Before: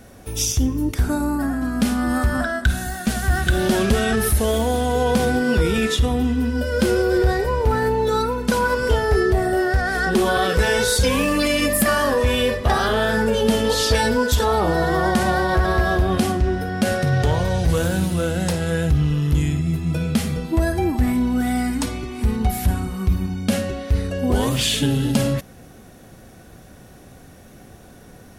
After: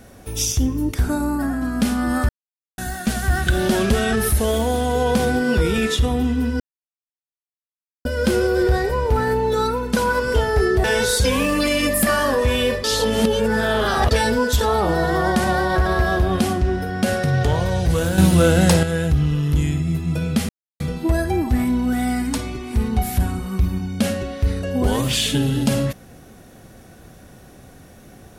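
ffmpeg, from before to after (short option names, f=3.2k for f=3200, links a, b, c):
-filter_complex "[0:a]asplit=10[a][b][c][d][e][f][g][h][i][j];[a]atrim=end=2.29,asetpts=PTS-STARTPTS,afade=t=out:st=2.286:d=0.004:c=hsin[k];[b]atrim=start=2.29:end=2.78,asetpts=PTS-STARTPTS,volume=0[l];[c]atrim=start=2.78:end=6.6,asetpts=PTS-STARTPTS,afade=t=in:d=0.004:c=hsin,afade=t=out:st=3.816:d=0.004:c=hsin,apad=pad_dur=1.45[m];[d]atrim=start=6.6:end=9.392,asetpts=PTS-STARTPTS,afade=t=in:d=0.004:c=hsin[n];[e]atrim=start=10.628:end=12.632[o];[f]atrim=start=12.628:end=13.902,asetpts=PTS-STARTPTS,areverse[p];[g]atrim=start=13.898:end=17.972[q];[h]atrim=start=17.968:end=18.622,asetpts=PTS-STARTPTS,volume=7.5dB[r];[i]atrim=start=18.618:end=20.28,asetpts=PTS-STARTPTS,afade=t=out:st=1.658:d=0.004:c=hsin,apad=pad_dur=0.31[s];[j]atrim=start=20.28,asetpts=PTS-STARTPTS,afade=t=in:d=0.004:c=hsin[t];[k][l][m][n]concat=n=4:v=0:a=1[u];[u][o]acrossfade=d=0.004:c1=hsin:c2=hsin[v];[v][p]acrossfade=d=0.004:c1=hsin:c2=hsin[w];[w][q]acrossfade=d=0.004:c1=hsin:c2=hsin[x];[x][r]acrossfade=d=0.004:c1=hsin:c2=hsin[y];[s][t]concat=n=2:v=0:a=1[z];[y][z]acrossfade=d=0.004:c1=hsin:c2=hsin"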